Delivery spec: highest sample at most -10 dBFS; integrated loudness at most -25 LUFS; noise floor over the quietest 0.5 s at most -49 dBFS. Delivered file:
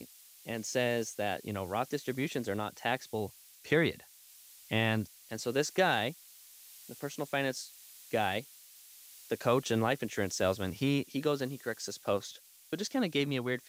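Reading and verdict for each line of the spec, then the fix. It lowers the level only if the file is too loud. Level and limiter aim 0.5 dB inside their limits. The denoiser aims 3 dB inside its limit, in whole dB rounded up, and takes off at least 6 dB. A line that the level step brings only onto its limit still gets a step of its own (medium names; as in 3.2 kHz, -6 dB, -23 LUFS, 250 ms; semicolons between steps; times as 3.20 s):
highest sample -14.0 dBFS: pass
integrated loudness -33.5 LUFS: pass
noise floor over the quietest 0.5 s -57 dBFS: pass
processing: none needed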